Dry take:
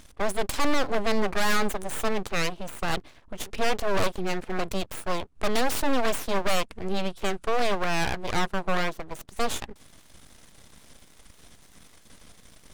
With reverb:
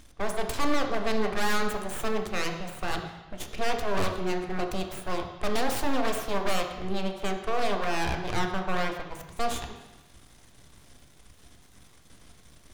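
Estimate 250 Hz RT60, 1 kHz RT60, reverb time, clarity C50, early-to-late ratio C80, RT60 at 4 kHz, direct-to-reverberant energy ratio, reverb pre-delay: 1.0 s, 1.1 s, 1.0 s, 6.5 dB, 8.5 dB, 1.1 s, 3.5 dB, 3 ms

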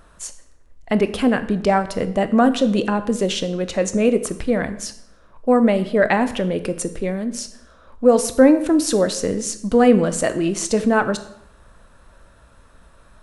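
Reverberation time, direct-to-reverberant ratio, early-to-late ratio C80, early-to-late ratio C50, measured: 0.75 s, 10.5 dB, 15.5 dB, 13.5 dB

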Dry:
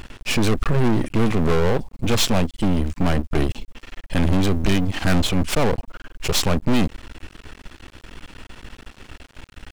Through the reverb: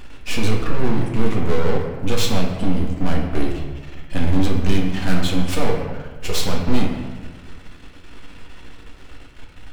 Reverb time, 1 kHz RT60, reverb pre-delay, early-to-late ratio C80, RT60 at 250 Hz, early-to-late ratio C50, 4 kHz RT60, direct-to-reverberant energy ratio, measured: 1.4 s, 1.3 s, 4 ms, 6.0 dB, 1.5 s, 3.5 dB, 0.90 s, -1.5 dB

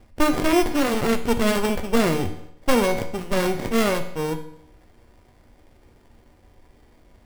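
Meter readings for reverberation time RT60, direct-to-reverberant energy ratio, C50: 0.75 s, 5.5 dB, 10.0 dB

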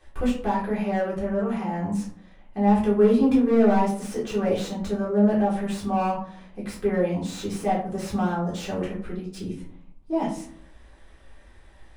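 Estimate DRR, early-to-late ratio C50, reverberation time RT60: -7.0 dB, 6.5 dB, 0.55 s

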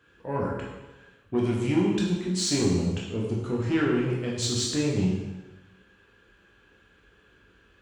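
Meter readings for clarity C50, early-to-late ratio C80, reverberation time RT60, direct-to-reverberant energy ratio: 1.5 dB, 4.0 dB, 1.1 s, -4.5 dB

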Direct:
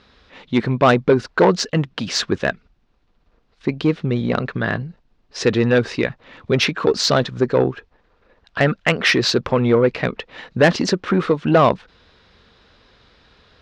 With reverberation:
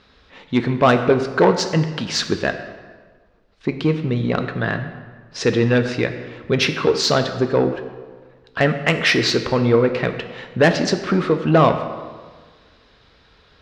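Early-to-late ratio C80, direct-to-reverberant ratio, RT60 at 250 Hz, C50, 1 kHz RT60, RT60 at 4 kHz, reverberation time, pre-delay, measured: 10.5 dB, 6.5 dB, 1.5 s, 9.0 dB, 1.5 s, 1.0 s, 1.5 s, 3 ms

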